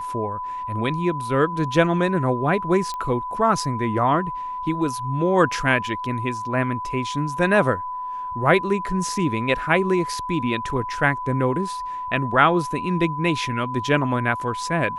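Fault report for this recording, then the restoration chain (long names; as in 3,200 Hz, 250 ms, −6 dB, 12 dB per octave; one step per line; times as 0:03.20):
whistle 1,000 Hz −27 dBFS
0:02.94: click −18 dBFS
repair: click removal
notch filter 1,000 Hz, Q 30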